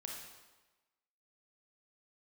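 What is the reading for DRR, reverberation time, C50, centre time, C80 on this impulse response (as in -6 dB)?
-1.0 dB, 1.2 s, 1.0 dB, 60 ms, 4.0 dB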